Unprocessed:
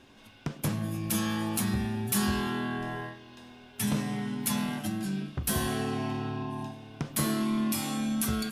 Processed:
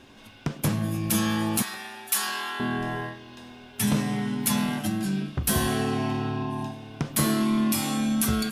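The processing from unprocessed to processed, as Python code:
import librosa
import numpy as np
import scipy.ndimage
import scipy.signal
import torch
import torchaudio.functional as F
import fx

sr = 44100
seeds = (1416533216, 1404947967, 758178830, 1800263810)

y = fx.highpass(x, sr, hz=860.0, slope=12, at=(1.62, 2.6))
y = y * librosa.db_to_amplitude(5.0)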